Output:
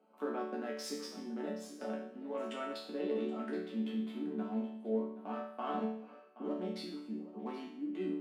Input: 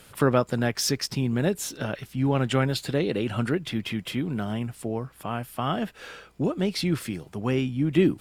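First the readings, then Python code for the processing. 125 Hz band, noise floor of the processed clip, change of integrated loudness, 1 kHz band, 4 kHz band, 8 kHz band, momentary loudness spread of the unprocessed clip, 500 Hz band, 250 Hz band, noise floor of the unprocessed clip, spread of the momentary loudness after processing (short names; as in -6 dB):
under -25 dB, -55 dBFS, -12.5 dB, -10.5 dB, -17.0 dB, under -15 dB, 9 LU, -11.0 dB, -11.5 dB, -53 dBFS, 6 LU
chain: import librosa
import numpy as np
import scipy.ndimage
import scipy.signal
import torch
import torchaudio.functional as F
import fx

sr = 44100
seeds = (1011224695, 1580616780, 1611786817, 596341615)

p1 = fx.wiener(x, sr, points=25)
p2 = fx.high_shelf(p1, sr, hz=2700.0, db=-9.5)
p3 = fx.over_compress(p2, sr, threshold_db=-26.0, ratio=-0.5)
p4 = p2 + (p3 * 10.0 ** (1.0 / 20.0))
p5 = scipy.signal.sosfilt(scipy.signal.cheby1(6, 3, 200.0, 'highpass', fs=sr, output='sos'), p4)
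p6 = fx.resonator_bank(p5, sr, root=50, chord='major', decay_s=0.66)
p7 = p6 + fx.echo_single(p6, sr, ms=775, db=-15.5, dry=0)
y = p7 * 10.0 ** (6.0 / 20.0)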